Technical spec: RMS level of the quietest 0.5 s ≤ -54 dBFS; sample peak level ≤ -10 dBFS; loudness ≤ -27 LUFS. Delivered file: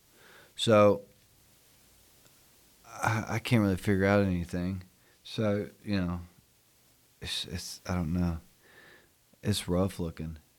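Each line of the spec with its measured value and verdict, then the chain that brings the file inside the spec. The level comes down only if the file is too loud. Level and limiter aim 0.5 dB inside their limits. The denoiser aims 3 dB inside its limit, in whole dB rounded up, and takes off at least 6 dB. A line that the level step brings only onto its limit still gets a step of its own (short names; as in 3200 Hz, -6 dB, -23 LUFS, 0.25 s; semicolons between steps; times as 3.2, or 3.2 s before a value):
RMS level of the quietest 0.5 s -65 dBFS: OK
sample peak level -12.5 dBFS: OK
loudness -30.0 LUFS: OK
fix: none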